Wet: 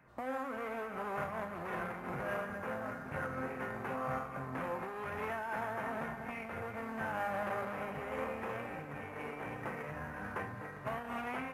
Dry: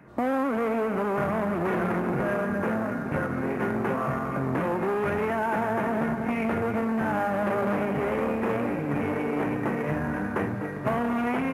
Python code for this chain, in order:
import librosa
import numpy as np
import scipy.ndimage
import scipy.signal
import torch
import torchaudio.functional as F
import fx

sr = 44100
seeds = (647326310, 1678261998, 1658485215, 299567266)

y = fx.peak_eq(x, sr, hz=270.0, db=-11.0, octaves=1.6)
y = fx.comb_fb(y, sr, f0_hz=260.0, decay_s=0.81, harmonics='all', damping=0.0, mix_pct=80)
y = fx.am_noise(y, sr, seeds[0], hz=5.7, depth_pct=60)
y = y * 10.0 ** (7.0 / 20.0)